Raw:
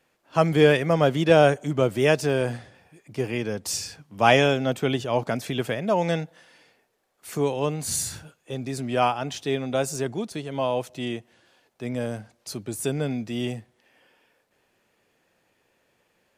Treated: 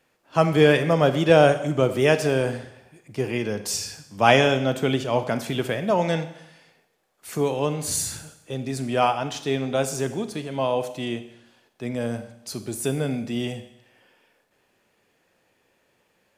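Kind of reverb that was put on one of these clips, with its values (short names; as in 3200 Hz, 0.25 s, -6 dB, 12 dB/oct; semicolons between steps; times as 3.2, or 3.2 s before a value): Schroeder reverb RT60 0.83 s, combs from 30 ms, DRR 10 dB; gain +1 dB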